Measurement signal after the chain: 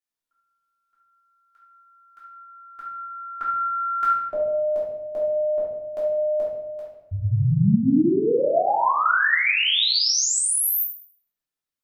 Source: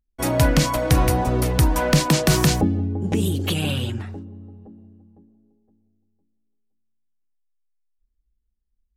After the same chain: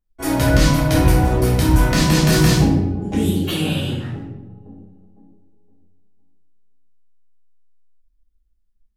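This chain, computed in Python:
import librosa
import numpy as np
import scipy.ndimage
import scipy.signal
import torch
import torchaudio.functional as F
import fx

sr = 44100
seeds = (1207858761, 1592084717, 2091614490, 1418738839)

y = fx.room_shoebox(x, sr, seeds[0], volume_m3=280.0, walls='mixed', distance_m=3.2)
y = y * librosa.db_to_amplitude(-7.0)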